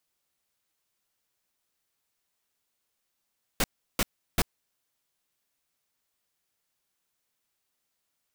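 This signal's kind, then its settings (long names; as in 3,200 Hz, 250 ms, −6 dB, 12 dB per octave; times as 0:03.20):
noise bursts pink, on 0.04 s, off 0.35 s, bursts 3, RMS −23.5 dBFS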